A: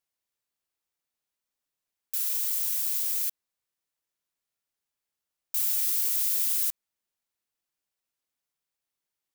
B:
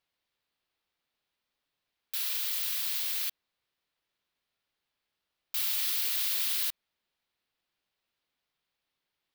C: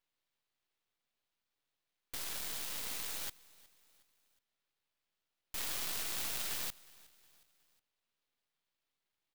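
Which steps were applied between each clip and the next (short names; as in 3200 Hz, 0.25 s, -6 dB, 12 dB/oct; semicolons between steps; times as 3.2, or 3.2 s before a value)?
resonant high shelf 5300 Hz -10 dB, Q 1.5; gain +6 dB
self-modulated delay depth 0.066 ms; feedback echo 0.364 s, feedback 47%, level -22.5 dB; half-wave rectifier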